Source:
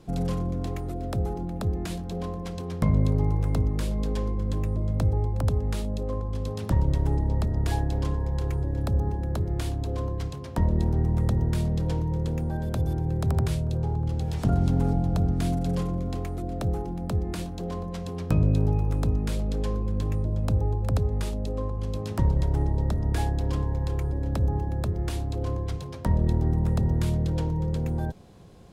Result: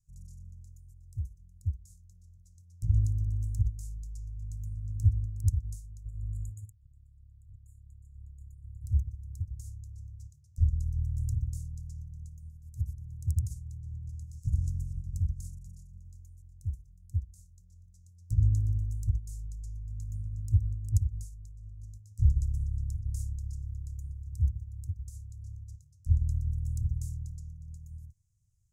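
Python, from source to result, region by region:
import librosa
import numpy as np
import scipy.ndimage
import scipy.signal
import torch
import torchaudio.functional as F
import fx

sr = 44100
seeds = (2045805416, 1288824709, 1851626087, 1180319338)

y = fx.chain(x, sr, fx.over_compress(threshold_db=-29.0, ratio=-0.5),
    fx.brickwall_bandstop(low_hz=1900.0, high_hz=6700.0), at=(6.05, 8.84))
y = scipy.signal.sosfilt(scipy.signal.ellip(3, 1.0, 40, [110.0, 6800.0], 'bandstop', fs=sr, output='sos'), y)
y = fx.peak_eq(y, sr, hz=6000.0, db=6.5, octaves=1.0)
y = fx.upward_expand(y, sr, threshold_db=-33.0, expansion=2.5)
y = y * 10.0 ** (3.5 / 20.0)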